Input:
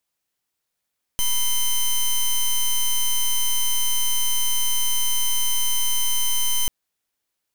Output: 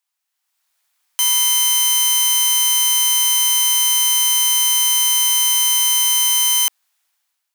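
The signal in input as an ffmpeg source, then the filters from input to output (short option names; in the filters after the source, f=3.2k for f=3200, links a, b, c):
-f lavfi -i "aevalsrc='0.106*(2*lt(mod(3080*t,1),0.1)-1)':d=5.49:s=44100"
-af "highpass=f=760:w=0.5412,highpass=f=760:w=1.3066,alimiter=limit=-17dB:level=0:latency=1:release=32,dynaudnorm=f=150:g=7:m=11.5dB"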